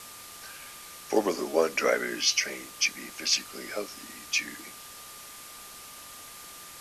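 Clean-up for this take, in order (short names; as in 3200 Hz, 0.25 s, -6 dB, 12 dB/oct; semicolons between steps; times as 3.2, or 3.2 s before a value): de-click; notch 1200 Hz, Q 30; noise print and reduce 28 dB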